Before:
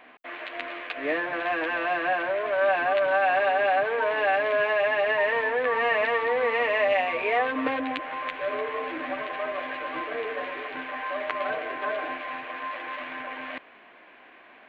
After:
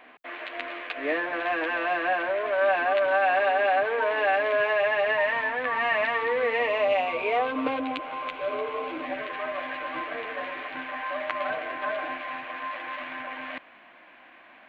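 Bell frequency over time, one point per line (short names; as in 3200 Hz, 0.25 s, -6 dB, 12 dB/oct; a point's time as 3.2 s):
bell -14 dB 0.23 oct
4.34 s 150 Hz
5.35 s 460 Hz
6.12 s 460 Hz
6.75 s 1800 Hz
9 s 1800 Hz
9.5 s 420 Hz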